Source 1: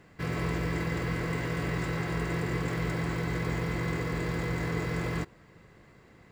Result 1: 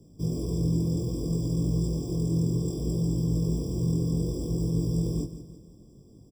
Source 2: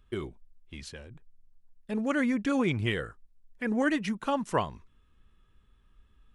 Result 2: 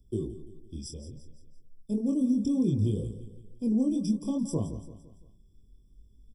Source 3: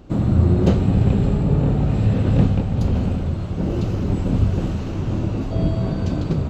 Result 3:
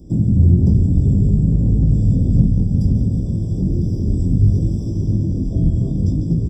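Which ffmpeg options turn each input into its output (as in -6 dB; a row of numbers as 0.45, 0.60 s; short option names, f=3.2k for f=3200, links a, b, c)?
-filter_complex "[0:a]firequalizer=gain_entry='entry(300,0);entry(850,-21);entry(1300,-24);entry(3000,3)':delay=0.05:min_phase=1,acontrast=39,flanger=delay=17.5:depth=6.7:speed=0.62,acrossover=split=220[a][b];[b]acompressor=threshold=-31dB:ratio=6[c];[a][c]amix=inputs=2:normalize=0,asuperstop=centerf=2800:order=4:qfactor=1.2,aecho=1:1:170|340|510|680:0.224|0.101|0.0453|0.0204,afftfilt=real='re*eq(mod(floor(b*sr/1024/1200),2),0)':imag='im*eq(mod(floor(b*sr/1024/1200),2),0)':win_size=1024:overlap=0.75,volume=2.5dB"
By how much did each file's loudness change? +3.5, +0.5, +3.0 LU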